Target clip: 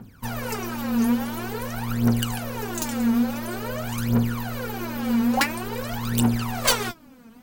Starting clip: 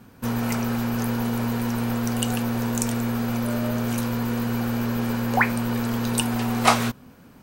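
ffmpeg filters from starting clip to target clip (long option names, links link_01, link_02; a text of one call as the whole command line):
ffmpeg -i in.wav -af "aeval=exprs='(mod(2.82*val(0)+1,2)-1)/2.82':channel_layout=same,aphaser=in_gain=1:out_gain=1:delay=4.5:decay=0.79:speed=0.48:type=triangular,volume=-5dB" out.wav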